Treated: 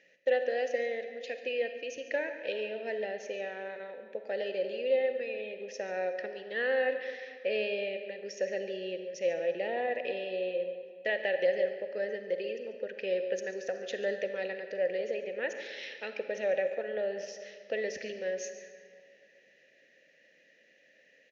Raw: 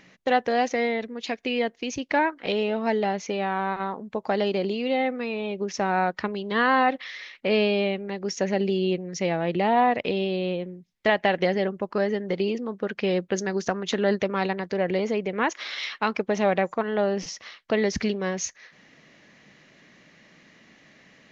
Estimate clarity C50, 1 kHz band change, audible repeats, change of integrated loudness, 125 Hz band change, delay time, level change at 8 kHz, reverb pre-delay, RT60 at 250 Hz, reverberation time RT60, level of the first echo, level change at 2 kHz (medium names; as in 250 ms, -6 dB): 7.0 dB, -18.0 dB, 1, -8.0 dB, under -20 dB, 141 ms, no reading, 37 ms, 2.1 s, 2.2 s, -15.0 dB, -7.5 dB